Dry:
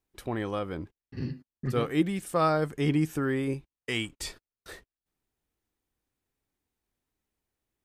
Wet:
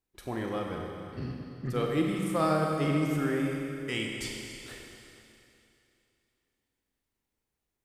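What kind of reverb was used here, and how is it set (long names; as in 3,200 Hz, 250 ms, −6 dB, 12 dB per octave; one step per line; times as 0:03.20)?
four-comb reverb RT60 2.8 s, combs from 32 ms, DRR 0 dB
level −3.5 dB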